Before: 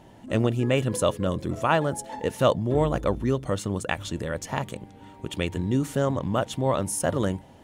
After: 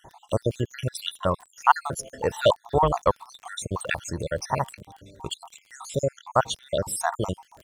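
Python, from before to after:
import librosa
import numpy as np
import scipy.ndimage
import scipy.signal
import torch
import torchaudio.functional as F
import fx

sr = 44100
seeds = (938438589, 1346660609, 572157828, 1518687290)

y = fx.spec_dropout(x, sr, seeds[0], share_pct=67)
y = fx.graphic_eq_10(y, sr, hz=(250, 1000, 2000, 4000, 8000), db=(-8, 9, -4, 5, 4))
y = fx.dmg_crackle(y, sr, seeds[1], per_s=31.0, level_db=-41.0)
y = F.gain(torch.from_numpy(y), 3.0).numpy()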